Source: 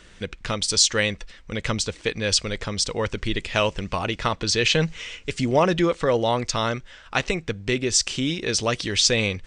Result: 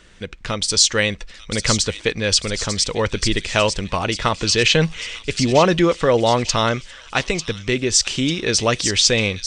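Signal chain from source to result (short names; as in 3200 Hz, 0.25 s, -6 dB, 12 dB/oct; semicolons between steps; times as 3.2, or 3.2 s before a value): AGC gain up to 7 dB; on a send: thin delay 0.896 s, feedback 47%, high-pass 3800 Hz, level -6 dB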